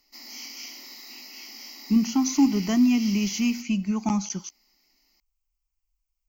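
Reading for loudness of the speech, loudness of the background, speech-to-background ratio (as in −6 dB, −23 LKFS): −23.5 LKFS, −39.0 LKFS, 15.5 dB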